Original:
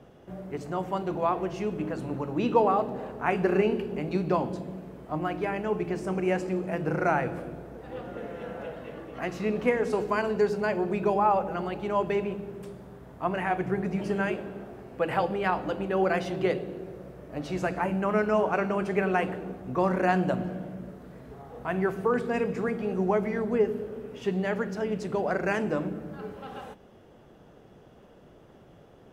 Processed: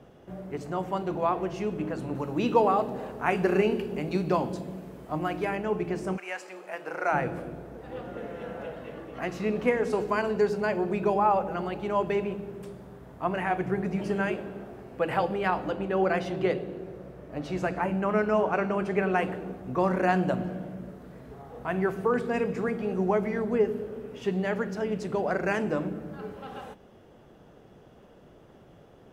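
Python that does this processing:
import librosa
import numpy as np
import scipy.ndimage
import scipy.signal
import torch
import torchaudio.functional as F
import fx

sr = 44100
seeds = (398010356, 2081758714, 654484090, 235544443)

y = fx.high_shelf(x, sr, hz=4000.0, db=7.0, at=(2.15, 5.56))
y = fx.highpass(y, sr, hz=fx.line((6.16, 1200.0), (7.12, 530.0)), slope=12, at=(6.16, 7.12), fade=0.02)
y = fx.high_shelf(y, sr, hz=5600.0, db=-5.0, at=(15.69, 19.16))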